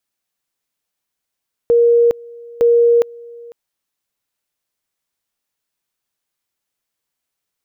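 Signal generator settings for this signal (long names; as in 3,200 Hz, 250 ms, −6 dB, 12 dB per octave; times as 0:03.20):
tone at two levels in turn 471 Hz −8 dBFS, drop 24.5 dB, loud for 0.41 s, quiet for 0.50 s, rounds 2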